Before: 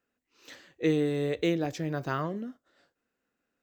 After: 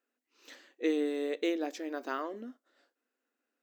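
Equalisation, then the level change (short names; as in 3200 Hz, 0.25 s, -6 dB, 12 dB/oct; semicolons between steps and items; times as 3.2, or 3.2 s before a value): brick-wall FIR high-pass 220 Hz; -3.5 dB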